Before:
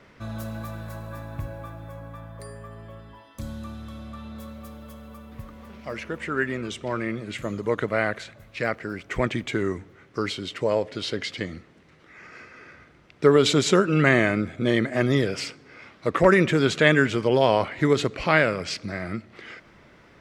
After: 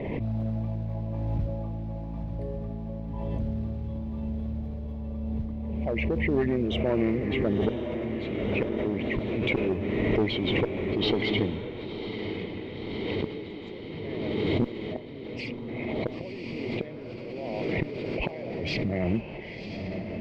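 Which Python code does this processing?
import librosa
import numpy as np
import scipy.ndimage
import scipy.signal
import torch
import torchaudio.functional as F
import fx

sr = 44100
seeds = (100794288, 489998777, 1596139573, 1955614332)

y = fx.envelope_sharpen(x, sr, power=1.5)
y = scipy.signal.sosfilt(scipy.signal.cheby1(2, 1.0, [830.0, 2300.0], 'bandstop', fs=sr, output='sos'), y)
y = fx.peak_eq(y, sr, hz=5000.0, db=-7.5, octaves=0.67)
y = fx.gate_flip(y, sr, shuts_db=-17.0, range_db=-29)
y = fx.clip_asym(y, sr, top_db=-29.0, bottom_db=-20.5)
y = fx.mod_noise(y, sr, seeds[0], snr_db=24)
y = fx.air_absorb(y, sr, metres=320.0)
y = fx.echo_diffused(y, sr, ms=1002, feedback_pct=63, wet_db=-6.0)
y = fx.pre_swell(y, sr, db_per_s=21.0)
y = y * 10.0 ** (5.0 / 20.0)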